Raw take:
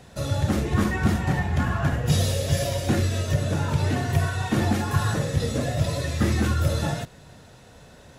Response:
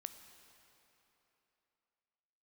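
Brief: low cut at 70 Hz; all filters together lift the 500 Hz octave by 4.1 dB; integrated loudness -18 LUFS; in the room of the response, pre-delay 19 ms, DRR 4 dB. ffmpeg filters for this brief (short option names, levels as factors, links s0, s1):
-filter_complex "[0:a]highpass=70,equalizer=f=500:t=o:g=5,asplit=2[s0][s1];[1:a]atrim=start_sample=2205,adelay=19[s2];[s1][s2]afir=irnorm=-1:irlink=0,volume=1[s3];[s0][s3]amix=inputs=2:normalize=0,volume=1.68"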